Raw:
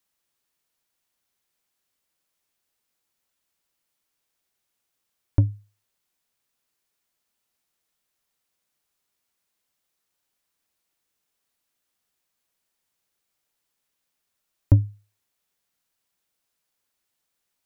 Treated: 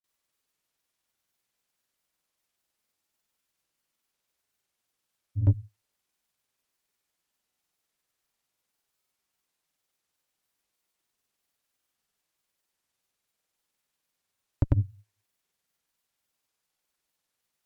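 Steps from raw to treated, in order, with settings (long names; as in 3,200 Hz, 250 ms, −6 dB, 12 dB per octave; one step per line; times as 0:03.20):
granular cloud 100 ms
harmonic generator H 6 −28 dB, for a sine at −10 dBFS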